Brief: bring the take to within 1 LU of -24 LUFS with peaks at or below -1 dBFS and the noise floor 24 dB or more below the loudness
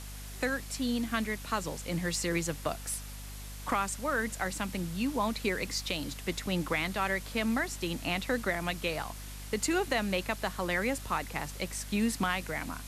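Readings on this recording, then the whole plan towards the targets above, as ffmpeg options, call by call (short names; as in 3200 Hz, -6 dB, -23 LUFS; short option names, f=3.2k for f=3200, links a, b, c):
hum 50 Hz; harmonics up to 250 Hz; hum level -41 dBFS; noise floor -43 dBFS; noise floor target -57 dBFS; loudness -32.5 LUFS; peak -17.5 dBFS; loudness target -24.0 LUFS
-> -af "bandreject=f=50:t=h:w=4,bandreject=f=100:t=h:w=4,bandreject=f=150:t=h:w=4,bandreject=f=200:t=h:w=4,bandreject=f=250:t=h:w=4"
-af "afftdn=nr=14:nf=-43"
-af "volume=8.5dB"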